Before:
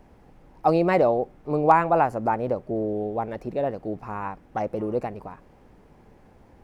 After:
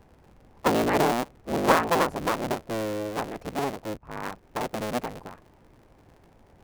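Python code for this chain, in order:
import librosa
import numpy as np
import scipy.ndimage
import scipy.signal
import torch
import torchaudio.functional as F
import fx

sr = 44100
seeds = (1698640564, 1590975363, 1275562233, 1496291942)

y = fx.cycle_switch(x, sr, every=3, mode='inverted')
y = fx.band_widen(y, sr, depth_pct=100, at=(3.97, 4.43))
y = F.gain(torch.from_numpy(y), -3.0).numpy()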